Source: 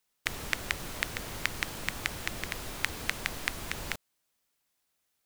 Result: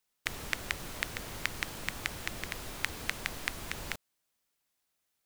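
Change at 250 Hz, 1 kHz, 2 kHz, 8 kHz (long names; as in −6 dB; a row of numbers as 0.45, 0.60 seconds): −2.5, −2.5, −2.5, −2.5 decibels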